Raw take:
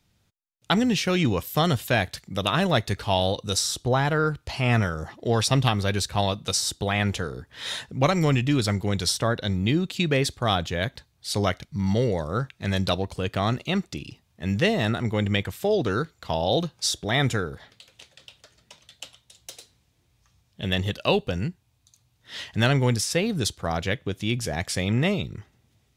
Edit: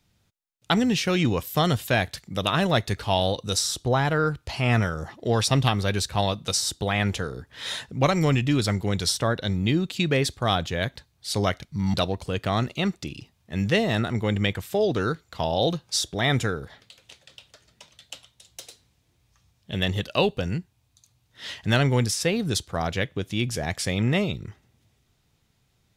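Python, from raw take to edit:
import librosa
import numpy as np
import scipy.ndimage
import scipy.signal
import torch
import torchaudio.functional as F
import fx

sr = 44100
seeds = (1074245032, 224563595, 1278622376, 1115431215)

y = fx.edit(x, sr, fx.cut(start_s=11.94, length_s=0.9), tone=tone)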